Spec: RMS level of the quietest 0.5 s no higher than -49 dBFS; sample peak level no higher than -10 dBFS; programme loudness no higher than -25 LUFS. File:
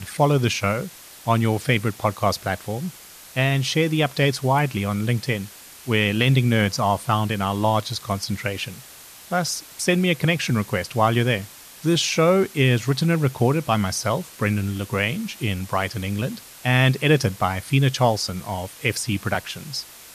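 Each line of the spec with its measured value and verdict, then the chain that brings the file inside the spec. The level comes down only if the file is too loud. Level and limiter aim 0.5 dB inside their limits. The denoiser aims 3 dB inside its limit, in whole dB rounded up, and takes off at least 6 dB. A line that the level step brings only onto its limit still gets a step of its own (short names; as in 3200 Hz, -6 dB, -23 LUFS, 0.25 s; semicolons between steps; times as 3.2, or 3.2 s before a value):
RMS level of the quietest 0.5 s -44 dBFS: fail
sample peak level -4.0 dBFS: fail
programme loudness -22.0 LUFS: fail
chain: denoiser 6 dB, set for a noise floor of -44 dBFS; gain -3.5 dB; limiter -10.5 dBFS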